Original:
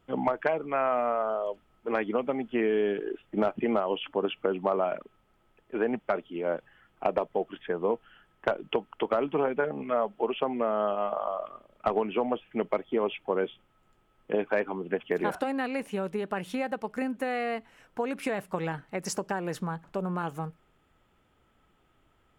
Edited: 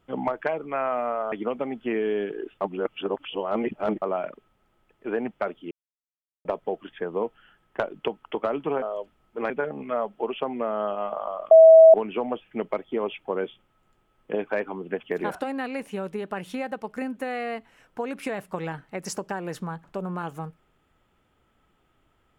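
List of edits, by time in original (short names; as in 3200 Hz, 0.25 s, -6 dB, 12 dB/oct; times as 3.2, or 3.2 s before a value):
1.32–2 move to 9.5
3.29–4.7 reverse
6.39–7.13 mute
11.51–11.94 bleep 647 Hz -7 dBFS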